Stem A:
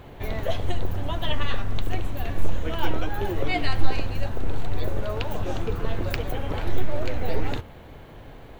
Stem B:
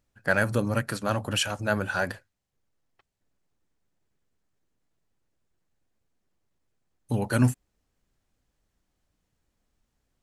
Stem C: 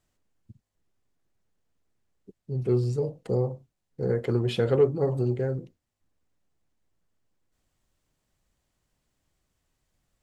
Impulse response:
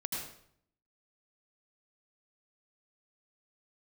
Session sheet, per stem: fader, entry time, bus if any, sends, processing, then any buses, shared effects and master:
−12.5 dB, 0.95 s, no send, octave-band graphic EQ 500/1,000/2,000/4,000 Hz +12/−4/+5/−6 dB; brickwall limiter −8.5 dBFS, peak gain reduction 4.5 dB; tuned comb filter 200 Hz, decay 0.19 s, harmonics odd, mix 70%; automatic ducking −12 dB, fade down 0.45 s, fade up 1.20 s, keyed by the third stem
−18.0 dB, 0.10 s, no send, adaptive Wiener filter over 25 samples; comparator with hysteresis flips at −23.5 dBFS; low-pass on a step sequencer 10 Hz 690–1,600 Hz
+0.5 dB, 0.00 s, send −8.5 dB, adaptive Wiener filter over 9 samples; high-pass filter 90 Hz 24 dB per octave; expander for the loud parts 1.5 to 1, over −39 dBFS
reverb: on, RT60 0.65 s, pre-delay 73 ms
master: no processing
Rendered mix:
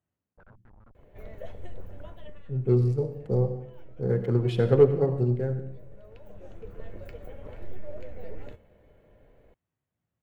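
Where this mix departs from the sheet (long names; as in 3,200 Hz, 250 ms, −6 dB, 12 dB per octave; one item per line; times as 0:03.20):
stem B −18.0 dB → −26.5 dB
master: extra low-shelf EQ 130 Hz +8.5 dB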